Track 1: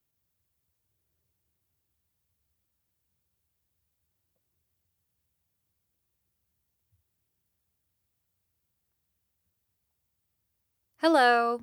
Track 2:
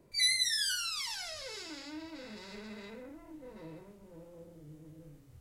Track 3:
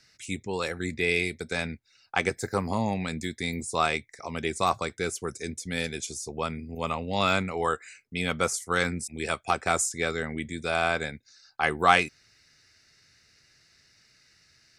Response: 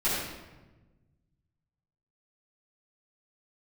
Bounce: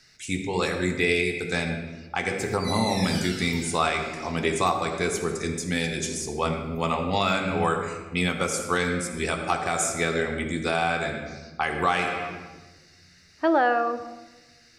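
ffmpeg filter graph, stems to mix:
-filter_complex "[0:a]lowpass=1.9k,adelay=2400,volume=2.5dB,asplit=2[a][b];[b]volume=-21.5dB[c];[1:a]adelay=2450,volume=-9.5dB,asplit=2[d][e];[e]volume=-3.5dB[f];[2:a]volume=2.5dB,asplit=2[g][h];[h]volume=-13dB[i];[3:a]atrim=start_sample=2205[j];[c][f][i]amix=inputs=3:normalize=0[k];[k][j]afir=irnorm=-1:irlink=0[l];[a][d][g][l]amix=inputs=4:normalize=0,alimiter=limit=-10.5dB:level=0:latency=1:release=364"

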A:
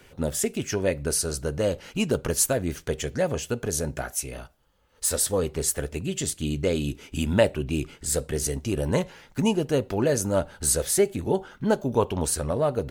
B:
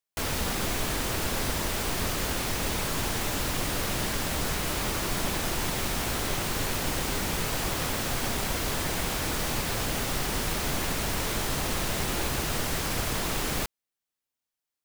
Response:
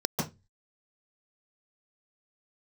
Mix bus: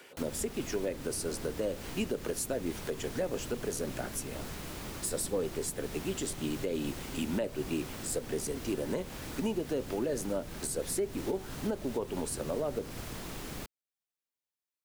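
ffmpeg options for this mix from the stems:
-filter_complex "[0:a]highpass=310,bandreject=f=6.3k:w=19,volume=2dB[a];[1:a]volume=-7dB[b];[a][b]amix=inputs=2:normalize=0,acrossover=split=400[c][d];[d]acompressor=threshold=-55dB:ratio=1.5[e];[c][e]amix=inputs=2:normalize=0,lowshelf=f=120:g=-5.5,alimiter=limit=-23dB:level=0:latency=1:release=185"

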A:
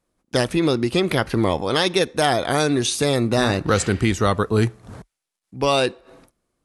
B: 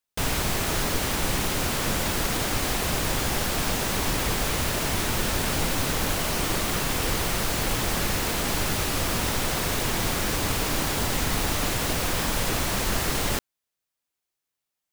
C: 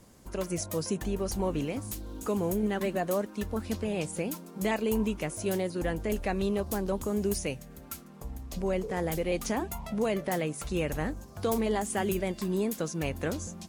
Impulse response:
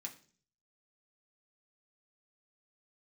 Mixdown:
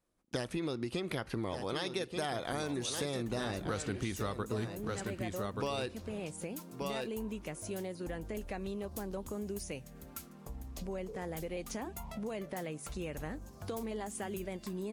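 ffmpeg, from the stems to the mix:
-filter_complex "[0:a]volume=-8dB,asplit=2[a][b];[b]volume=-9.5dB[c];[2:a]acompressor=threshold=-38dB:ratio=2,adelay=2250,volume=-3dB[d];[c]aecho=0:1:1180:1[e];[a][d][e]amix=inputs=3:normalize=0,acompressor=threshold=-33dB:ratio=6"

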